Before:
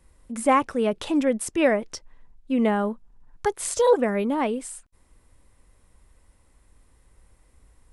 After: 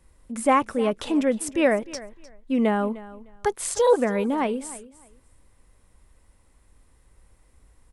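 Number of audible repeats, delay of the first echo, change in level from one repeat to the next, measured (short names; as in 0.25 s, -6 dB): 2, 0.304 s, -14.0 dB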